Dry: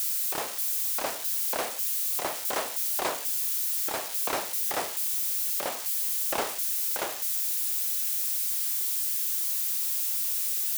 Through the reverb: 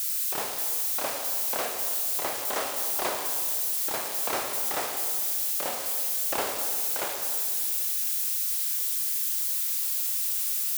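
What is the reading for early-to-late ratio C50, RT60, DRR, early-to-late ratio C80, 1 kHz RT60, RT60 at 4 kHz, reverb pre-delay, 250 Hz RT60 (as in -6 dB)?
4.0 dB, 2.0 s, 2.5 dB, 5.5 dB, 2.0 s, 1.8 s, 19 ms, 2.2 s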